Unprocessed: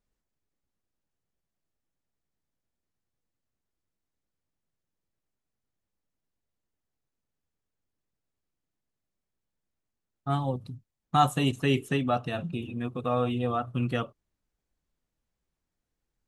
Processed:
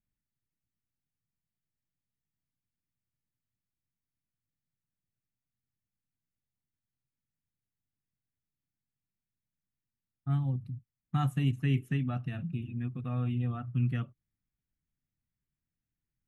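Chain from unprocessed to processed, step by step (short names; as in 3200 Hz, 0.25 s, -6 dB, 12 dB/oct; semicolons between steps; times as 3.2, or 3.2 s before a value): graphic EQ 125/250/500/1000/2000/4000/8000 Hz +10/+3/-11/-8/+5/-9/-8 dB; gain -7.5 dB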